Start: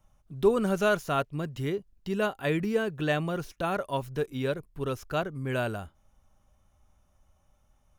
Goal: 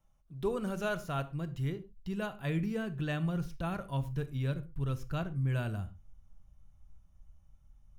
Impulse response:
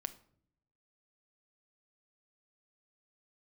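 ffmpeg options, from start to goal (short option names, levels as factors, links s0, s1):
-filter_complex "[0:a]asubboost=boost=6:cutoff=170[s0];[1:a]atrim=start_sample=2205,atrim=end_sample=6174[s1];[s0][s1]afir=irnorm=-1:irlink=0,volume=0.473"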